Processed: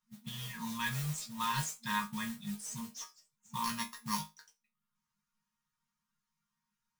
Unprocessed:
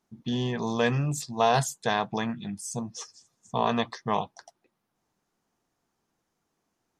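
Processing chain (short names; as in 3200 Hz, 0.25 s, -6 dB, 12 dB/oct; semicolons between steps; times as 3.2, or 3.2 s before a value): 3.64–4.21 sample sorter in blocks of 8 samples; reverb removal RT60 0.58 s; FFT band-reject 230–880 Hz; modulation noise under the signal 10 dB; resonator bank D#3 sus4, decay 0.22 s; gain +7.5 dB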